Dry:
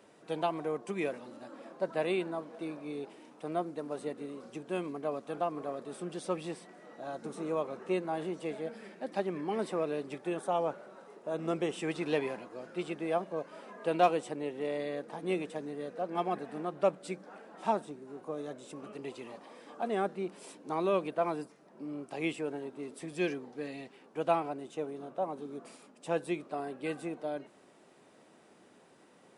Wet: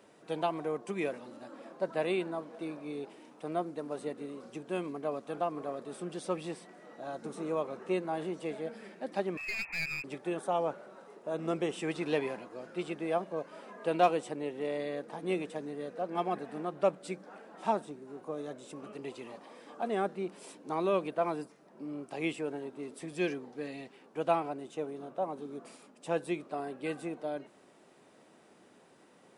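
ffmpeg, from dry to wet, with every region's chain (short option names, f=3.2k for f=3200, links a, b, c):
-filter_complex "[0:a]asettb=1/sr,asplit=3[a][b][c];[a]atrim=end=9.374[d];[b]atrim=start=9.37:end=10.04,asetpts=PTS-STARTPTS,afade=t=in:d=0.004:c=qsin,afade=t=out:st=0.666:d=0.004:c=qsin,highpass=300,lowpass=f=2.5k:t=q:w=0.5098,lowpass=f=2.5k:t=q:w=0.6013,lowpass=f=2.5k:t=q:w=0.9,lowpass=f=2.5k:t=q:w=2.563,afreqshift=-2900,aeval=exprs='clip(val(0),-1,0.0119)':c=same[e];[c]atrim=start=10.036[f];[d][e]acrossfade=d=0.004:c1=hsin:c2=qsin[g];[g][f]acrossfade=d=0.004:c1=qsin:c2=hsin"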